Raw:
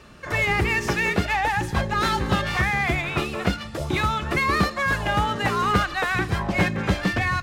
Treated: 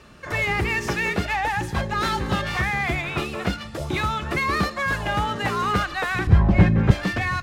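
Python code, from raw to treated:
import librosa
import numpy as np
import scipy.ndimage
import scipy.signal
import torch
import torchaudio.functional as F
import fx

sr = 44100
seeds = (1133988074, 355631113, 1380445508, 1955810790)

y = fx.cheby_harmonics(x, sr, harmonics=(5, 8), levels_db=(-27, -44), full_scale_db=-7.5)
y = fx.riaa(y, sr, side='playback', at=(6.27, 6.91))
y = y * 10.0 ** (-2.5 / 20.0)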